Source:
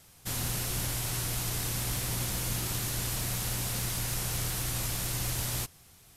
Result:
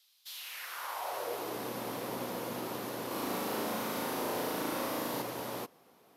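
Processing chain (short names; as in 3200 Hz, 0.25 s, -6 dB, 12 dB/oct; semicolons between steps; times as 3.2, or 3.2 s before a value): ten-band EQ 500 Hz +12 dB, 1000 Hz +9 dB, 8000 Hz -11 dB; 3.07–5.22 flutter echo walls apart 6.3 m, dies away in 1.1 s; high-pass sweep 3800 Hz -> 240 Hz, 0.29–1.59; gain -7.5 dB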